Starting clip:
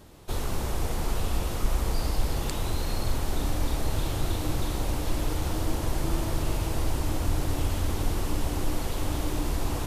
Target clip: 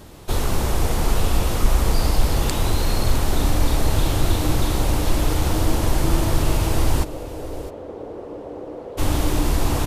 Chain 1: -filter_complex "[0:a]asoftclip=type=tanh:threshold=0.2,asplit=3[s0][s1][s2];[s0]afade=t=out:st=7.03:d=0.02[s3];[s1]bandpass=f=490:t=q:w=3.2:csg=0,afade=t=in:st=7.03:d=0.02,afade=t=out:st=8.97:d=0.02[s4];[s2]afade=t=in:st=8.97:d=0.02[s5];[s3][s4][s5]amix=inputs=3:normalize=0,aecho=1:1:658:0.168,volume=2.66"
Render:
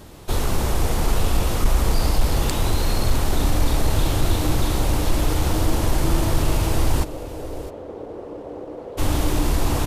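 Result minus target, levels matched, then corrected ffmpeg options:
saturation: distortion +19 dB
-filter_complex "[0:a]asoftclip=type=tanh:threshold=0.668,asplit=3[s0][s1][s2];[s0]afade=t=out:st=7.03:d=0.02[s3];[s1]bandpass=f=490:t=q:w=3.2:csg=0,afade=t=in:st=7.03:d=0.02,afade=t=out:st=8.97:d=0.02[s4];[s2]afade=t=in:st=8.97:d=0.02[s5];[s3][s4][s5]amix=inputs=3:normalize=0,aecho=1:1:658:0.168,volume=2.66"

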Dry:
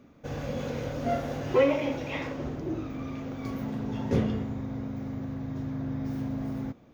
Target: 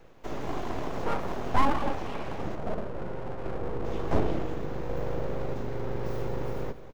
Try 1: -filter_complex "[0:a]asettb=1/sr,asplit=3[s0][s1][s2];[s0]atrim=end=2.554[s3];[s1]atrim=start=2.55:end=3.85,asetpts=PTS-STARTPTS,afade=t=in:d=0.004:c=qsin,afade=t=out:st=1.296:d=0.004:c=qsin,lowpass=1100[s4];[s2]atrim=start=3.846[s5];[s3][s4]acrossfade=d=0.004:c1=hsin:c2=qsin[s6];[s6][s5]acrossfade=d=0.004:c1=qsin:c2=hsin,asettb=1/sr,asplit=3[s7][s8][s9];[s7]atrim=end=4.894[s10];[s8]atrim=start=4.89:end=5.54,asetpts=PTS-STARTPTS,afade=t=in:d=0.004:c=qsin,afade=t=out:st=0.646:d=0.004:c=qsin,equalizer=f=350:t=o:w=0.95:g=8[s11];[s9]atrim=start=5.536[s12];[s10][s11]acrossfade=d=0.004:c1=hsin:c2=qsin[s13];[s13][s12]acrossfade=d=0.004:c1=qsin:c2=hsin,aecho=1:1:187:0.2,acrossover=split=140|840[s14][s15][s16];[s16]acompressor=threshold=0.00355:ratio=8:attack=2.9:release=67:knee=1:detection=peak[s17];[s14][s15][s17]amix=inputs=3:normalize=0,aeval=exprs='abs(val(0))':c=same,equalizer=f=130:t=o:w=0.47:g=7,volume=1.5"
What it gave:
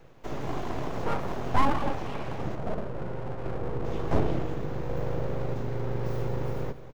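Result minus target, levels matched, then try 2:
125 Hz band +3.0 dB
-filter_complex "[0:a]asettb=1/sr,asplit=3[s0][s1][s2];[s0]atrim=end=2.554[s3];[s1]atrim=start=2.55:end=3.85,asetpts=PTS-STARTPTS,afade=t=in:d=0.004:c=qsin,afade=t=out:st=1.296:d=0.004:c=qsin,lowpass=1100[s4];[s2]atrim=start=3.846[s5];[s3][s4]acrossfade=d=0.004:c1=hsin:c2=qsin[s6];[s6][s5]acrossfade=d=0.004:c1=qsin:c2=hsin,asettb=1/sr,asplit=3[s7][s8][s9];[s7]atrim=end=4.894[s10];[s8]atrim=start=4.89:end=5.54,asetpts=PTS-STARTPTS,afade=t=in:d=0.004:c=qsin,afade=t=out:st=0.646:d=0.004:c=qsin,equalizer=f=350:t=o:w=0.95:g=8[s11];[s9]atrim=start=5.536[s12];[s10][s11]acrossfade=d=0.004:c1=hsin:c2=qsin[s13];[s13][s12]acrossfade=d=0.004:c1=qsin:c2=hsin,aecho=1:1:187:0.2,acrossover=split=140|840[s14][s15][s16];[s16]acompressor=threshold=0.00355:ratio=8:attack=2.9:release=67:knee=1:detection=peak[s17];[s14][s15][s17]amix=inputs=3:normalize=0,aeval=exprs='abs(val(0))':c=same,volume=1.5"

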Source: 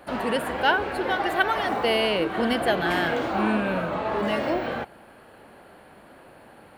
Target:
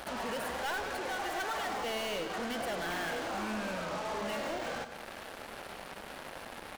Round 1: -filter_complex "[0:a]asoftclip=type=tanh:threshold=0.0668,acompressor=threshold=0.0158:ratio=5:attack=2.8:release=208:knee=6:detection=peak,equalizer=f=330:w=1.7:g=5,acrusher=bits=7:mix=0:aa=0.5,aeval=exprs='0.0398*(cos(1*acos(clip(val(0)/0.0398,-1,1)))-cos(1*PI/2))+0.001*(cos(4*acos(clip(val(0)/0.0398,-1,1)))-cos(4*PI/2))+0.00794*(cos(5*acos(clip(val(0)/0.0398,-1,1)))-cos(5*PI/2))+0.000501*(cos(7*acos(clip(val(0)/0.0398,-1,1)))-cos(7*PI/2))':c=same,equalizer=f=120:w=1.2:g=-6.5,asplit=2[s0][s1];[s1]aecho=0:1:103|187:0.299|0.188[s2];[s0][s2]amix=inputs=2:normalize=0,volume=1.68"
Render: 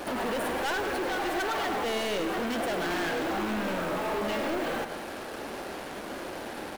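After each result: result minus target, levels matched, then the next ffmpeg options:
compression: peak gain reduction -8.5 dB; 250 Hz band +3.0 dB
-filter_complex "[0:a]asoftclip=type=tanh:threshold=0.0668,acompressor=threshold=0.00473:ratio=5:attack=2.8:release=208:knee=6:detection=peak,equalizer=f=330:w=1.7:g=5,acrusher=bits=7:mix=0:aa=0.5,aeval=exprs='0.0398*(cos(1*acos(clip(val(0)/0.0398,-1,1)))-cos(1*PI/2))+0.001*(cos(4*acos(clip(val(0)/0.0398,-1,1)))-cos(4*PI/2))+0.00794*(cos(5*acos(clip(val(0)/0.0398,-1,1)))-cos(5*PI/2))+0.000501*(cos(7*acos(clip(val(0)/0.0398,-1,1)))-cos(7*PI/2))':c=same,equalizer=f=120:w=1.2:g=-6.5,asplit=2[s0][s1];[s1]aecho=0:1:103|187:0.299|0.188[s2];[s0][s2]amix=inputs=2:normalize=0,volume=1.68"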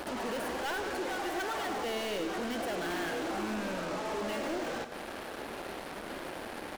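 250 Hz band +3.0 dB
-filter_complex "[0:a]asoftclip=type=tanh:threshold=0.0668,acompressor=threshold=0.00473:ratio=5:attack=2.8:release=208:knee=6:detection=peak,equalizer=f=330:w=1.7:g=-4.5,acrusher=bits=7:mix=0:aa=0.5,aeval=exprs='0.0398*(cos(1*acos(clip(val(0)/0.0398,-1,1)))-cos(1*PI/2))+0.001*(cos(4*acos(clip(val(0)/0.0398,-1,1)))-cos(4*PI/2))+0.00794*(cos(5*acos(clip(val(0)/0.0398,-1,1)))-cos(5*PI/2))+0.000501*(cos(7*acos(clip(val(0)/0.0398,-1,1)))-cos(7*PI/2))':c=same,equalizer=f=120:w=1.2:g=-6.5,asplit=2[s0][s1];[s1]aecho=0:1:103|187:0.299|0.188[s2];[s0][s2]amix=inputs=2:normalize=0,volume=1.68"

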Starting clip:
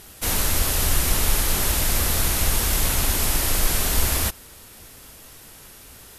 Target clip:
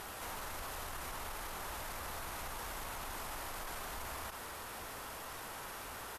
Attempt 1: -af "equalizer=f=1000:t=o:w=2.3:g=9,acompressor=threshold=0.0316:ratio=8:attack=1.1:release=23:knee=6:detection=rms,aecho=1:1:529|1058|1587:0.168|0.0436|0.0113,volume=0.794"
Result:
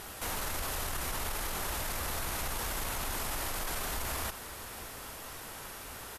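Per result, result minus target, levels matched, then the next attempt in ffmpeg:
compression: peak gain reduction -9.5 dB; 1 kHz band -3.5 dB
-af "equalizer=f=1000:t=o:w=2.3:g=9,acompressor=threshold=0.0106:ratio=8:attack=1.1:release=23:knee=6:detection=rms,aecho=1:1:529|1058|1587:0.168|0.0436|0.0113,volume=0.794"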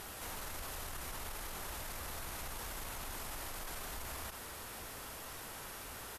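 1 kHz band -3.5 dB
-af "equalizer=f=1000:t=o:w=2.3:g=15.5,acompressor=threshold=0.0106:ratio=8:attack=1.1:release=23:knee=6:detection=rms,aecho=1:1:529|1058|1587:0.168|0.0436|0.0113,volume=0.794"

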